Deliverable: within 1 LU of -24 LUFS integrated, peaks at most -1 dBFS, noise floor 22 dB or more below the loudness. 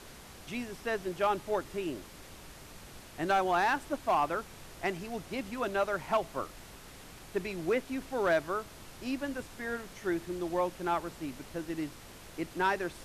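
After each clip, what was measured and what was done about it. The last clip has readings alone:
clipped 0.3%; flat tops at -21.0 dBFS; noise floor -51 dBFS; noise floor target -56 dBFS; loudness -33.5 LUFS; peak -21.0 dBFS; loudness target -24.0 LUFS
-> clip repair -21 dBFS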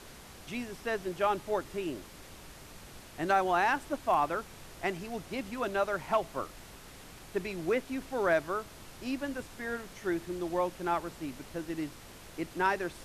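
clipped 0.0%; noise floor -51 dBFS; noise floor target -55 dBFS
-> noise print and reduce 6 dB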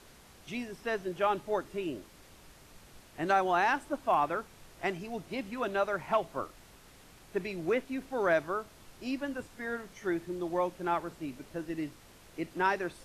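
noise floor -57 dBFS; loudness -33.0 LUFS; peak -15.0 dBFS; loudness target -24.0 LUFS
-> gain +9 dB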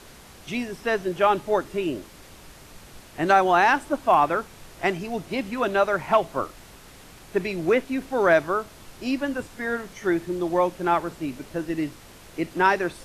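loudness -24.0 LUFS; peak -6.0 dBFS; noise floor -48 dBFS

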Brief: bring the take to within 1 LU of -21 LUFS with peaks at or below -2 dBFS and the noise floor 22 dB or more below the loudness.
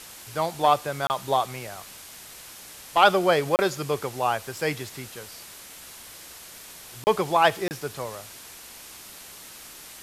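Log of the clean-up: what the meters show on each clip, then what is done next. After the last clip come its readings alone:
dropouts 4; longest dropout 29 ms; noise floor -44 dBFS; noise floor target -47 dBFS; loudness -24.5 LUFS; peak -3.5 dBFS; loudness target -21.0 LUFS
-> interpolate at 1.07/3.56/7.04/7.68, 29 ms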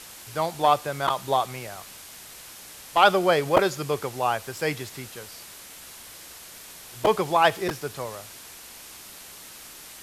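dropouts 0; noise floor -44 dBFS; noise floor target -47 dBFS
-> denoiser 6 dB, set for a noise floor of -44 dBFS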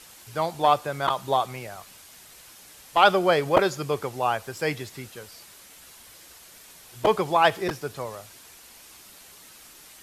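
noise floor -49 dBFS; loudness -24.5 LUFS; peak -3.5 dBFS; loudness target -21.0 LUFS
-> gain +3.5 dB; limiter -2 dBFS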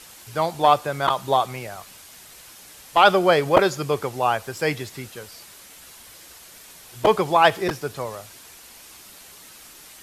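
loudness -21.0 LUFS; peak -2.0 dBFS; noise floor -46 dBFS

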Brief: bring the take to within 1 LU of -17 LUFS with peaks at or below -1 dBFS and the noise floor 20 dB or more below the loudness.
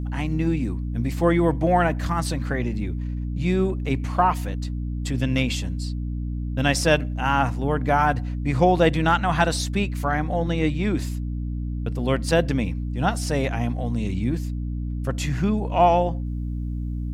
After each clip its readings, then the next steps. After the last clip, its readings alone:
hum 60 Hz; harmonics up to 300 Hz; hum level -25 dBFS; loudness -23.5 LUFS; peak -4.5 dBFS; loudness target -17.0 LUFS
-> de-hum 60 Hz, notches 5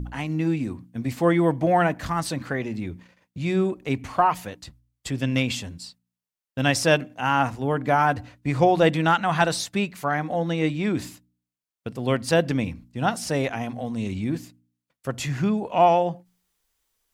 hum none; loudness -24.0 LUFS; peak -5.5 dBFS; loudness target -17.0 LUFS
-> gain +7 dB; limiter -1 dBFS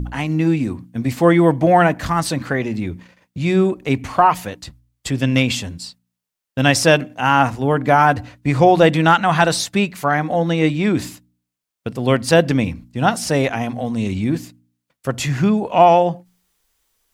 loudness -17.5 LUFS; peak -1.0 dBFS; noise floor -81 dBFS

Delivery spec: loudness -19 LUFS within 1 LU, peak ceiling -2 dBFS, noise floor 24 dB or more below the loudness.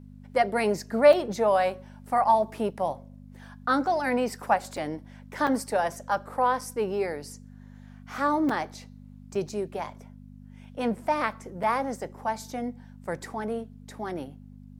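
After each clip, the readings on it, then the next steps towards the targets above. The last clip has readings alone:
dropouts 7; longest dropout 4.2 ms; hum 50 Hz; harmonics up to 250 Hz; hum level -45 dBFS; loudness -27.5 LUFS; peak -7.0 dBFS; loudness target -19.0 LUFS
-> interpolate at 1.13/4.77/5.47/6.61/8.49/9.35/11.63, 4.2 ms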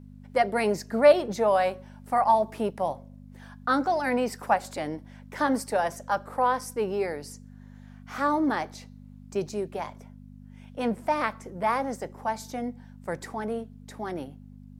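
dropouts 0; hum 50 Hz; harmonics up to 250 Hz; hum level -45 dBFS
-> de-hum 50 Hz, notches 5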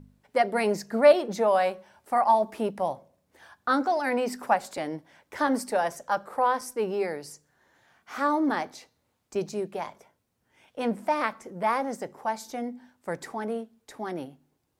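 hum none; loudness -27.5 LUFS; peak -7.0 dBFS; loudness target -19.0 LUFS
-> gain +8.5 dB; limiter -2 dBFS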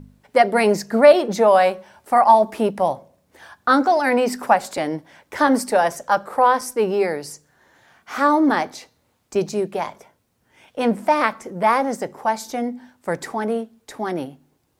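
loudness -19.5 LUFS; peak -2.0 dBFS; noise floor -66 dBFS

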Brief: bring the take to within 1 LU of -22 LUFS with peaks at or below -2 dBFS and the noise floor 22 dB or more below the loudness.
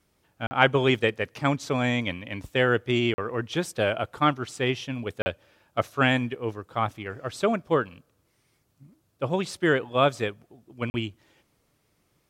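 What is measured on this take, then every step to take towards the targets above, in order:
dropouts 4; longest dropout 40 ms; loudness -26.5 LUFS; peak -2.0 dBFS; loudness target -22.0 LUFS
-> interpolate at 0.47/3.14/5.22/10.9, 40 ms; gain +4.5 dB; limiter -2 dBFS

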